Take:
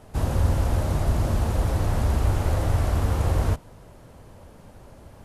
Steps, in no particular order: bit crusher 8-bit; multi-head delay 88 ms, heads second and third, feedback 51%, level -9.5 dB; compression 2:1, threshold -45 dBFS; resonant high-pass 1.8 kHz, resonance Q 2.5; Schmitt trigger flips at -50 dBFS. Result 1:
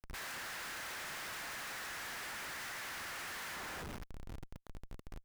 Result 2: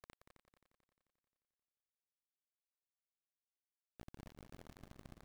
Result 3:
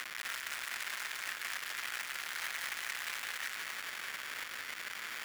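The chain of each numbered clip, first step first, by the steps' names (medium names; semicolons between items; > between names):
resonant high-pass > bit crusher > compression > multi-head delay > Schmitt trigger; compression > resonant high-pass > Schmitt trigger > bit crusher > multi-head delay; Schmitt trigger > compression > resonant high-pass > bit crusher > multi-head delay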